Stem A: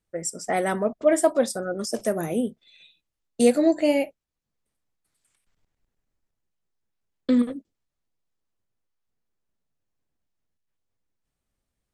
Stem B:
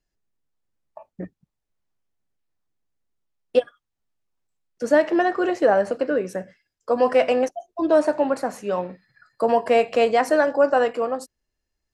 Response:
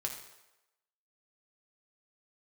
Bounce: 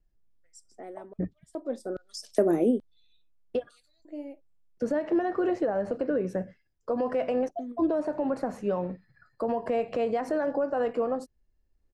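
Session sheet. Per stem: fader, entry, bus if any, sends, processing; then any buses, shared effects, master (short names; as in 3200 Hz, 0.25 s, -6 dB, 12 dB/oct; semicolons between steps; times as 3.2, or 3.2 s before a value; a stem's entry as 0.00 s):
-3.5 dB, 0.30 s, no send, LFO high-pass square 1.2 Hz 320–4100 Hz; auto duck -23 dB, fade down 0.95 s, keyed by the second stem
-4.0 dB, 0.00 s, no send, compressor 6:1, threshold -20 dBFS, peak gain reduction 9 dB; limiter -18 dBFS, peak gain reduction 6.5 dB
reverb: off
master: tilt -3 dB/oct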